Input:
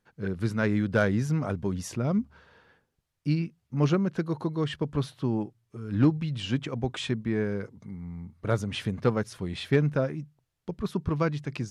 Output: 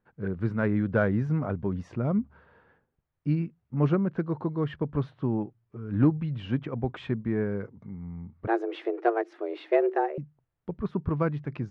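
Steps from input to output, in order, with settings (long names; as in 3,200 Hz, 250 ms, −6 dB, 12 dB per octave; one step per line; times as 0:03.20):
low-pass filter 1,700 Hz 12 dB per octave
0:08.47–0:10.18: frequency shifter +230 Hz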